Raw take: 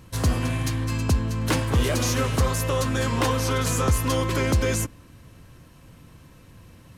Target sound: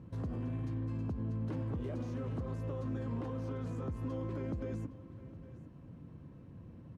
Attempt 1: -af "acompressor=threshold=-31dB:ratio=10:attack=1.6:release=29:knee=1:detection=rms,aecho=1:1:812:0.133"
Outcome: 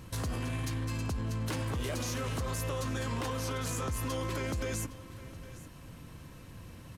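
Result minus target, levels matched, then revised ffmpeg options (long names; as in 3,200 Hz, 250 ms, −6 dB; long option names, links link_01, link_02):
250 Hz band −3.5 dB
-af "acompressor=threshold=-31dB:ratio=10:attack=1.6:release=29:knee=1:detection=rms,bandpass=frequency=200:width_type=q:width=0.69:csg=0,aecho=1:1:812:0.133"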